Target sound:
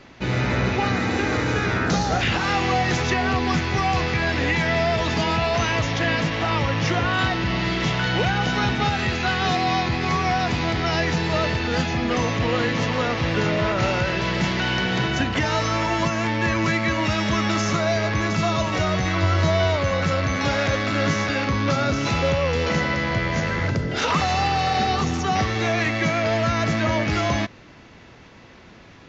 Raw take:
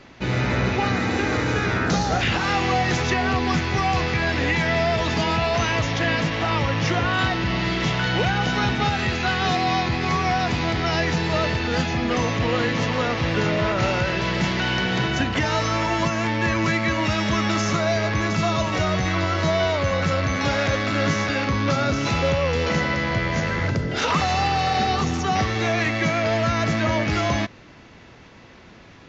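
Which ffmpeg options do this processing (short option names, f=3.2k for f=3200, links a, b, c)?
-filter_complex "[0:a]asettb=1/sr,asplit=3[a][b][c];[a]atrim=end=19.214[d];[b]atrim=start=19.21:end=19.76,asetpts=PTS-STARTPTS,afade=t=in:d=0.004:c=qsin,afade=t=out:st=0.546:d=0.004:c=qsin,equalizer=f=100:t=o:w=0.31:g=10[e];[c]atrim=start=19.756[f];[d][e]acrossfade=d=0.004:c1=hsin:c2=qsin[g];[g][f]acrossfade=d=0.004:c1=qsin:c2=hsin"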